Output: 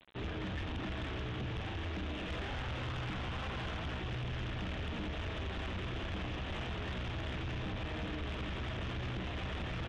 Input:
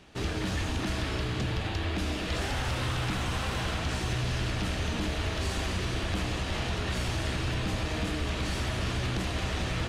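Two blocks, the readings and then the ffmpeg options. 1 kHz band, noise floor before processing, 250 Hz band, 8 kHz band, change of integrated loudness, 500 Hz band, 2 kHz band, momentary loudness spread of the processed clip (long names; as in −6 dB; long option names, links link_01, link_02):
−8.0 dB, −33 dBFS, −8.0 dB, −21.0 dB, −8.5 dB, −8.0 dB, −8.0 dB, 1 LU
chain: -af "aresample=8000,acrusher=bits=7:mix=0:aa=0.000001,aresample=44100,asoftclip=type=tanh:threshold=-30dB,volume=-4.5dB"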